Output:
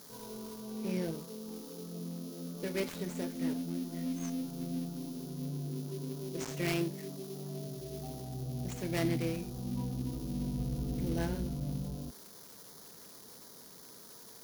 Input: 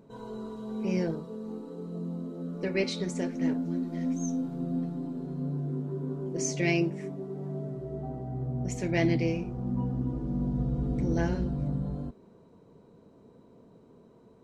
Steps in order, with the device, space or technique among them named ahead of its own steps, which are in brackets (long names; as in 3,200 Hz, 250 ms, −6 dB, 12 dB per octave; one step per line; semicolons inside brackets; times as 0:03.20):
budget class-D amplifier (gap after every zero crossing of 0.19 ms; spike at every zero crossing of −26.5 dBFS)
level −6 dB